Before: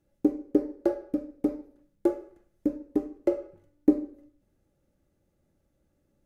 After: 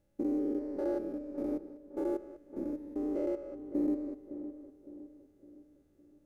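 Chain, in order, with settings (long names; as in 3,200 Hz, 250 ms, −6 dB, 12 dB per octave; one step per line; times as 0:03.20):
spectrum averaged block by block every 200 ms
feedback echo with a low-pass in the loop 560 ms, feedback 47%, low-pass 1,200 Hz, level −11 dB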